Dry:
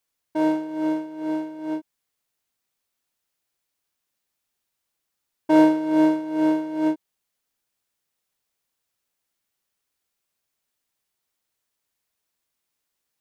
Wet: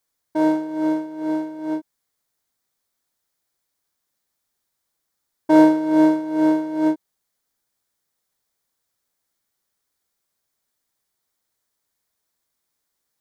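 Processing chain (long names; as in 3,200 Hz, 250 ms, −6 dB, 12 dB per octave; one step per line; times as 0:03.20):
parametric band 2,700 Hz −8.5 dB 0.4 octaves
level +3 dB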